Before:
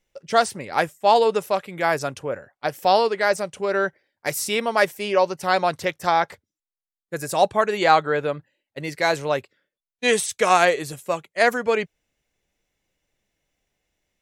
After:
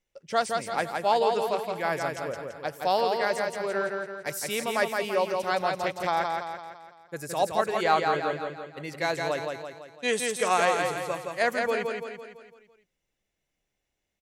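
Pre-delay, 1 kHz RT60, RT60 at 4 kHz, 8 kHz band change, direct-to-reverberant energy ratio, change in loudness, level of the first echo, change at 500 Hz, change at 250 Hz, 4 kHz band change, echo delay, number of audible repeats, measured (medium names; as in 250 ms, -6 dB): no reverb, no reverb, no reverb, -5.5 dB, no reverb, -6.0 dB, -4.0 dB, -5.5 dB, -5.5 dB, -5.5 dB, 168 ms, 6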